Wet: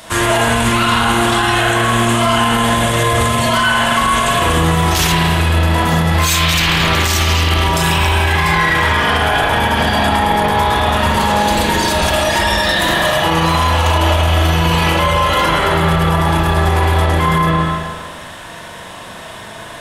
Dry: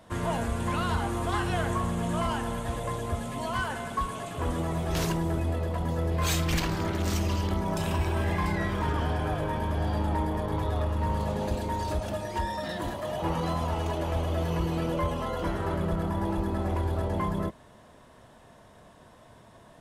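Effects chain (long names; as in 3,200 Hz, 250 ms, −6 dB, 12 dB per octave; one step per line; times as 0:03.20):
tilt shelving filter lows −9 dB, about 1,300 Hz
spring reverb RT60 1.6 s, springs 37/43 ms, chirp 40 ms, DRR −6.5 dB
boost into a limiter +22 dB
level −4 dB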